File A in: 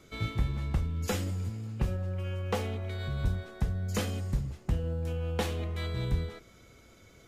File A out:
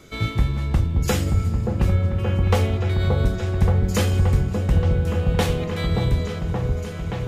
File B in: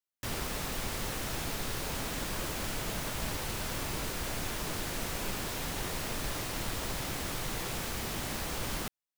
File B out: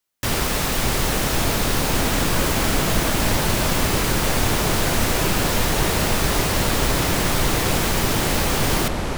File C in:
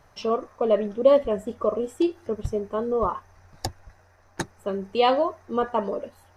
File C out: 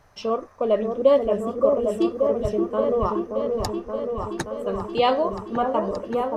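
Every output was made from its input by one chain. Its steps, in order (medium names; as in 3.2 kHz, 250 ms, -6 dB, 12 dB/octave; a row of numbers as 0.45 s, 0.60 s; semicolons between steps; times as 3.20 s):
delay with an opening low-pass 576 ms, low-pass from 750 Hz, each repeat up 1 oct, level -3 dB; peak normalisation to -6 dBFS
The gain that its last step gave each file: +9.0 dB, +14.0 dB, 0.0 dB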